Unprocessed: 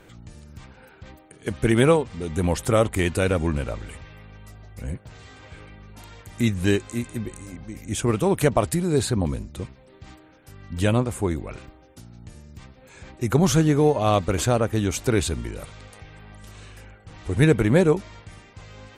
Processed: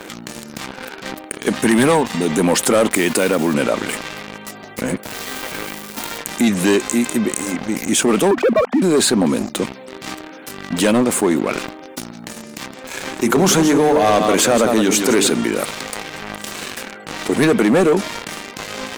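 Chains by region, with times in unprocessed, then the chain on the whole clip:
1.57–2.25 high shelf 8800 Hz +5 dB + comb 1.1 ms, depth 41%
2.91–3.54 block floating point 5-bit + HPF 51 Hz + compressor 2:1, threshold -26 dBFS
5.03–6.18 switching spikes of -41 dBFS + HPF 44 Hz + high shelf 4800 Hz -5 dB
8.31–8.82 sine-wave speech + air absorption 470 m + notches 50/100/150/200/250 Hz
12.13–15.3 HPF 73 Hz 24 dB/oct + notches 50/100/150/200/250/300/350/400/450 Hz + echo 0.165 s -10.5 dB
whole clip: Chebyshev high-pass 220 Hz, order 3; sample leveller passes 3; fast leveller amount 50%; gain -1.5 dB

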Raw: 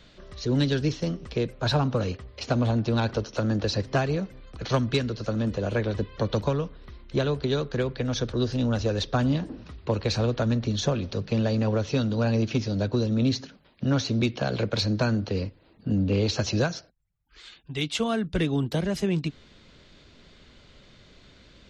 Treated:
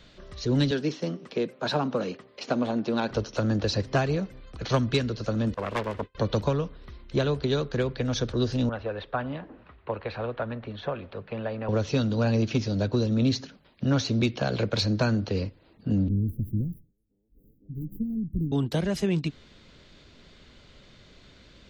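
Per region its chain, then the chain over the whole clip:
0.71–3.11 HPF 180 Hz 24 dB/oct + high shelf 3800 Hz -5.5 dB
5.54–6.15 self-modulated delay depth 0.7 ms + expander -30 dBFS + tone controls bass -7 dB, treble -12 dB
8.69–11.69 LPF 4300 Hz 24 dB/oct + three-band isolator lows -12 dB, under 500 Hz, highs -21 dB, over 2600 Hz
16.08–18.52 minimum comb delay 0.43 ms + inverse Chebyshev band-stop 1200–4800 Hz, stop band 80 dB + delay with a stepping band-pass 0.253 s, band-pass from 4400 Hz, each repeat -0.7 oct, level -6 dB
whole clip: dry

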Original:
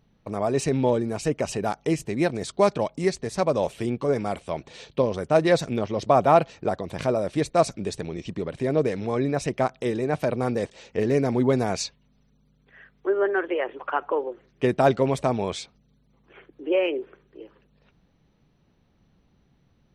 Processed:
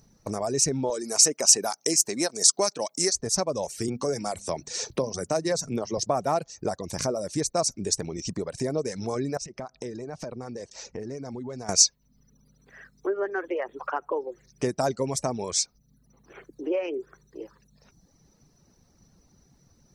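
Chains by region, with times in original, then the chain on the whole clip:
0.9–3.13 HPF 270 Hz + high shelf 2400 Hz +8 dB
3.88–5.98 notches 50/100/150/200/250 Hz + three-band squash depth 40%
9.37–11.69 compressor 5:1, threshold -36 dBFS + air absorption 98 m
whole clip: compressor 2:1, threshold -34 dBFS; resonant high shelf 4300 Hz +10.5 dB, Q 3; reverb removal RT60 0.7 s; gain +4 dB

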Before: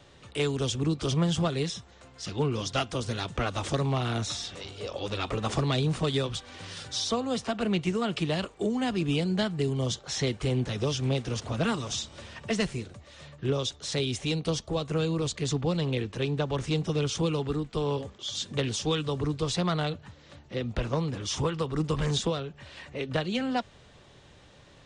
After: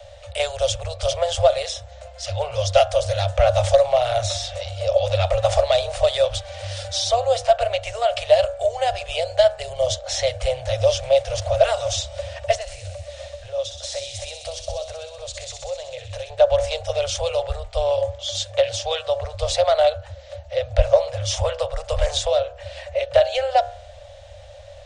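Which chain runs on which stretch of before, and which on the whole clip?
12.55–16.3 compressor, threshold -35 dBFS + thin delay 63 ms, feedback 79%, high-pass 3000 Hz, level -5 dB
18.5–19.34 HPF 130 Hz 6 dB/oct + air absorption 51 m
whole clip: Chebyshev band-stop 100–550 Hz, order 5; resonant low shelf 790 Hz +8.5 dB, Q 3; de-hum 70.75 Hz, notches 25; gain +7.5 dB

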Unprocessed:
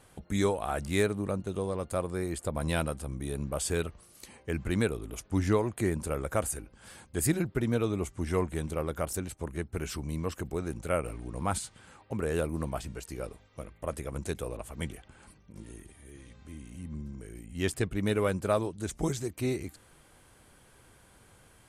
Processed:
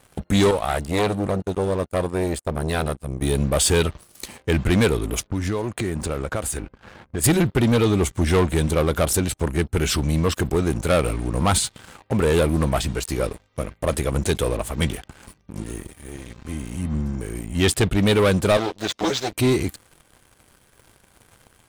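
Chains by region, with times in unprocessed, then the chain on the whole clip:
0.51–3.22 expander -32 dBFS + core saturation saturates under 1400 Hz
5.27–7.24 low-pass opened by the level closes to 1300 Hz, open at -25.5 dBFS + compressor 4:1, threshold -38 dBFS
18.57–19.32 minimum comb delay 9.6 ms + HPF 490 Hz 6 dB/oct + resonant high shelf 7000 Hz -12.5 dB, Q 1.5
whole clip: sample leveller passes 3; dynamic EQ 3600 Hz, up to +6 dB, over -47 dBFS, Q 2; gain +3.5 dB

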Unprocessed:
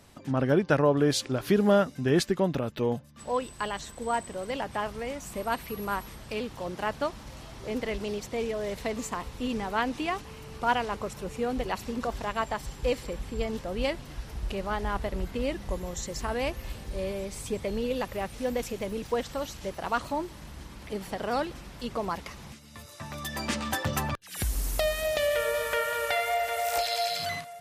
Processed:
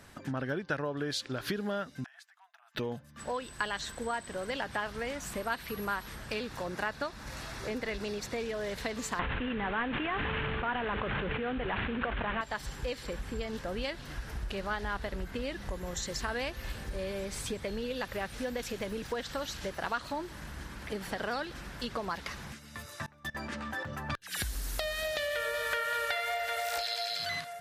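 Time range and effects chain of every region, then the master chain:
2.04–2.75 hard clip -15 dBFS + flipped gate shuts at -21 dBFS, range -26 dB + brick-wall FIR high-pass 640 Hz
6.33–8.45 notch 3100 Hz, Q 10 + mismatched tape noise reduction encoder only
9.19–12.41 CVSD 16 kbps + fast leveller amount 100%
23.06–24.1 high shelf 2700 Hz -10.5 dB + expander -37 dBFS + level quantiser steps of 20 dB
whole clip: dynamic EQ 4000 Hz, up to +8 dB, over -51 dBFS, Q 1.4; compressor 5:1, threshold -33 dBFS; bell 1600 Hz +9 dB 0.58 oct

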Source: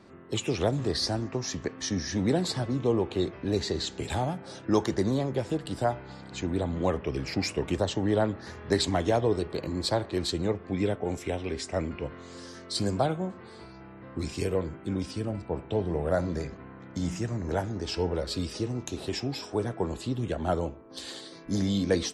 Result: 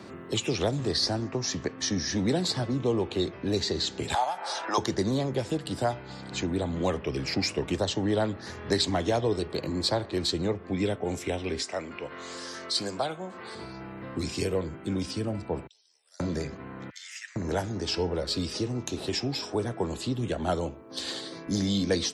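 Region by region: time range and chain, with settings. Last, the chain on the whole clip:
4.14–4.78 resonant high-pass 850 Hz, resonance Q 2.7 + upward compressor, threshold -27 dBFS
11.62–13.55 HPF 750 Hz 6 dB/oct + upward compressor, threshold -38 dBFS
15.67–16.2 band-pass 5200 Hz, Q 6 + differentiator
16.9–17.36 Chebyshev high-pass 1800 Hz, order 4 + high shelf 4500 Hz -7 dB
whole clip: dynamic EQ 4700 Hz, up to +6 dB, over -46 dBFS, Q 1; HPF 71 Hz; three-band squash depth 40%

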